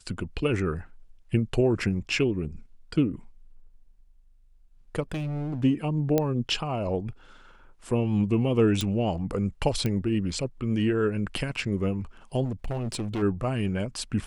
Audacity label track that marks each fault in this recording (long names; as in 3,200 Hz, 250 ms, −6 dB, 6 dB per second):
5.120000	5.640000	clipping −27.5 dBFS
6.180000	6.180000	click −10 dBFS
8.810000	8.810000	click −13 dBFS
9.860000	9.860000	click −15 dBFS
12.440000	13.230000	clipping −26 dBFS